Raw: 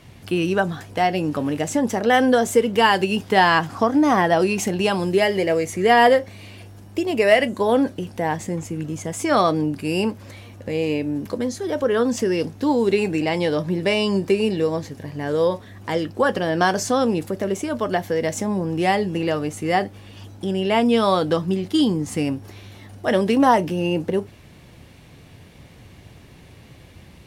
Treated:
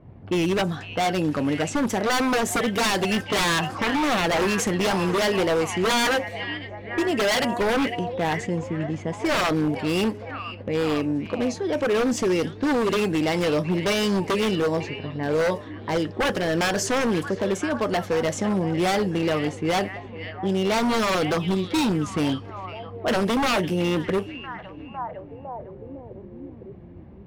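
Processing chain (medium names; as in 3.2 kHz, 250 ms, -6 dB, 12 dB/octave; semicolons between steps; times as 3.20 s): level-controlled noise filter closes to 710 Hz, open at -18 dBFS; repeats whose band climbs or falls 505 ms, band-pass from 2.7 kHz, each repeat -0.7 oct, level -8 dB; wavefolder -16.5 dBFS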